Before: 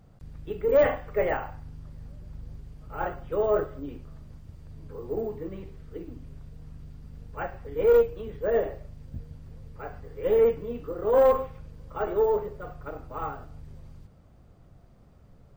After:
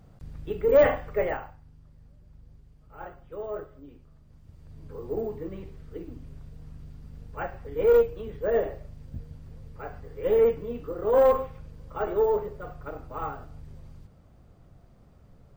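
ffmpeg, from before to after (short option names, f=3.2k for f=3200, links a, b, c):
-af "volume=12.5dB,afade=t=out:st=1:d=0.57:silence=0.237137,afade=t=in:st=4.24:d=0.72:silence=0.298538"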